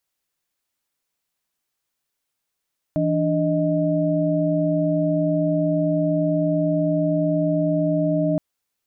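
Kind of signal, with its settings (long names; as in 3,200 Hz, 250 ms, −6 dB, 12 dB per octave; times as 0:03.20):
held notes E3/D4/D#5 sine, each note −22 dBFS 5.42 s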